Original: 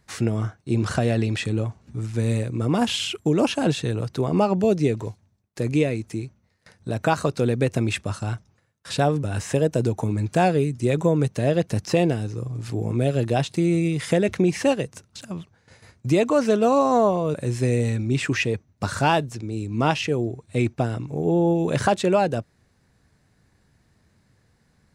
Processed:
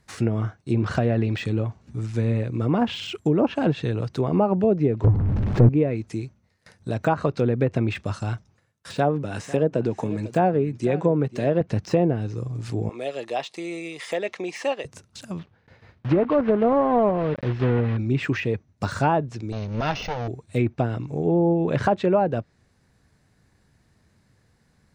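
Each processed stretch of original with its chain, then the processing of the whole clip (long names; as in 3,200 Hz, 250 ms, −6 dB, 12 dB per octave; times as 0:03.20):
0:05.04–0:05.69: converter with a step at zero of −32.5 dBFS + spectral tilt −3.5 dB per octave + power curve on the samples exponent 0.7
0:08.94–0:11.61: high-pass filter 150 Hz + single-tap delay 497 ms −17 dB
0:12.89–0:14.85: high-pass filter 600 Hz + high-shelf EQ 6,800 Hz −8.5 dB + notch filter 1,500 Hz, Q 5.5
0:15.39–0:17.98: one scale factor per block 3 bits + high-frequency loss of the air 270 metres
0:19.52–0:20.28: lower of the sound and its delayed copy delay 1.4 ms + linear-phase brick-wall low-pass 6,600 Hz + high-shelf EQ 3,600 Hz +7.5 dB
whole clip: treble cut that deepens with the level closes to 1,200 Hz, closed at −15 dBFS; de-essing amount 90%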